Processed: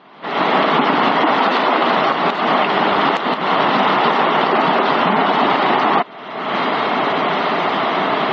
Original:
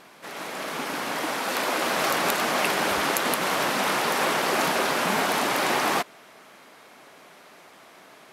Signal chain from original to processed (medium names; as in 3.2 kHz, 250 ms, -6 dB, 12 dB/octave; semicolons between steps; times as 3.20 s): recorder AGC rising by 42 dB/s; spectral gate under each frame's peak -20 dB strong; cabinet simulation 150–3300 Hz, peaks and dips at 330 Hz -3 dB, 530 Hz -7 dB, 1.6 kHz -8 dB, 2.4 kHz -9 dB; trim +6 dB